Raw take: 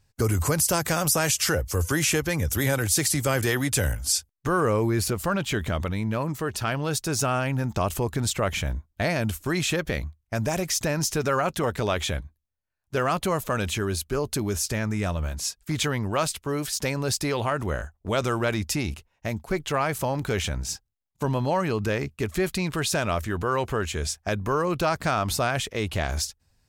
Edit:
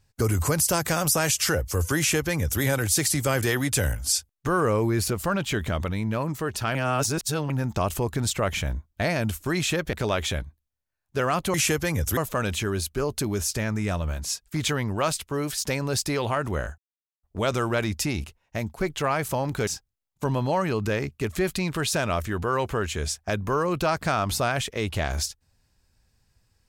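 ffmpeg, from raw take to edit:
-filter_complex "[0:a]asplit=8[a][b][c][d][e][f][g][h];[a]atrim=end=6.752[i];[b]atrim=start=6.748:end=7.502,asetpts=PTS-STARTPTS,areverse[j];[c]atrim=start=7.498:end=9.932[k];[d]atrim=start=11.708:end=13.322[l];[e]atrim=start=1.978:end=2.612[m];[f]atrim=start=13.318:end=17.93,asetpts=PTS-STARTPTS,afade=t=out:st=4.608:d=0.004:c=hsin,apad=pad_dur=0.45[n];[g]atrim=start=17.93:end=20.372,asetpts=PTS-STARTPTS,afade=t=in:d=0.004:c=hsin[o];[h]atrim=start=20.658[p];[i][j]acrossfade=d=0.004:c1=hsin:c2=hsin[q];[q][k]acrossfade=d=0.004:c1=hsin:c2=hsin[r];[r][l]acrossfade=d=0.004:c1=hsin:c2=hsin[s];[s][m]acrossfade=d=0.004:c1=hsin:c2=hsin[t];[n][o]concat=n=2:v=0:a=1[u];[t][u]acrossfade=d=0.004:c1=hsin:c2=hsin[v];[v][p]acrossfade=d=0.004:c1=hsin:c2=hsin"

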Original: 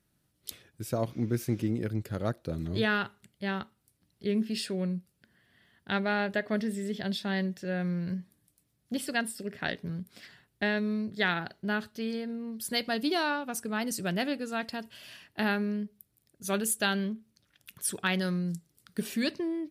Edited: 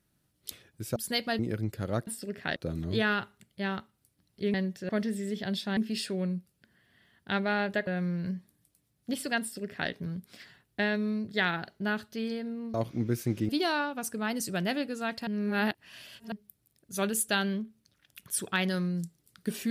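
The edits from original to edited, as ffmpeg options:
-filter_complex "[0:a]asplit=13[a][b][c][d][e][f][g][h][i][j][k][l][m];[a]atrim=end=0.962[n];[b]atrim=start=12.568:end=13.002[o];[c]atrim=start=1.708:end=2.392[p];[d]atrim=start=9.238:end=9.732[q];[e]atrim=start=2.388:end=4.372[r];[f]atrim=start=7.348:end=7.702[s];[g]atrim=start=6.468:end=7.352[t];[h]atrim=start=4.368:end=6.472[u];[i]atrim=start=7.698:end=12.572[v];[j]atrim=start=0.958:end=1.712[w];[k]atrim=start=12.998:end=14.782[x];[l]atrim=start=14.778:end=15.832,asetpts=PTS-STARTPTS,areverse[y];[m]atrim=start=15.828[z];[n][o]acrossfade=d=0.004:c1=hsin:c2=hsin[aa];[aa][p]acrossfade=d=0.004:c1=hsin:c2=hsin[ab];[ab][q]acrossfade=d=0.004:c1=hsin:c2=hsin[ac];[ac][r]acrossfade=d=0.004:c1=hsin:c2=hsin[ad];[ad][s]acrossfade=d=0.004:c1=hsin:c2=hsin[ae];[ae][t]acrossfade=d=0.004:c1=hsin:c2=hsin[af];[af][u]acrossfade=d=0.004:c1=hsin:c2=hsin[ag];[ag][v]acrossfade=d=0.004:c1=hsin:c2=hsin[ah];[ah][w]acrossfade=d=0.004:c1=hsin:c2=hsin[ai];[ai][x]acrossfade=d=0.004:c1=hsin:c2=hsin[aj];[aj][y]acrossfade=d=0.004:c1=hsin:c2=hsin[ak];[ak][z]acrossfade=d=0.004:c1=hsin:c2=hsin"

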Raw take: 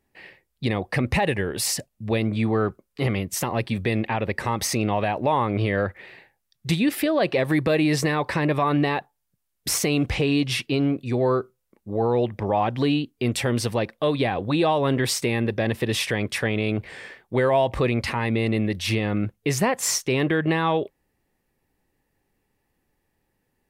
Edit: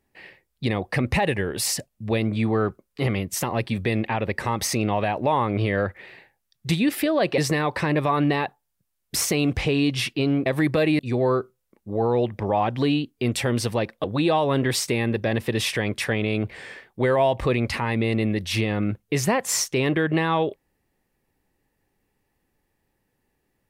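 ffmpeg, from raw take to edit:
-filter_complex "[0:a]asplit=5[a][b][c][d][e];[a]atrim=end=7.382[f];[b]atrim=start=7.908:end=10.992[g];[c]atrim=start=7.378:end=7.912[h];[d]atrim=start=10.988:end=14.042[i];[e]atrim=start=14.378[j];[f][g]acrossfade=d=0.004:c1=hsin:c2=hsin[k];[k][h]acrossfade=d=0.004:c1=hsin:c2=hsin[l];[l][i]acrossfade=d=0.004:c1=hsin:c2=hsin[m];[m][j]acrossfade=d=0.004:c1=hsin:c2=hsin"

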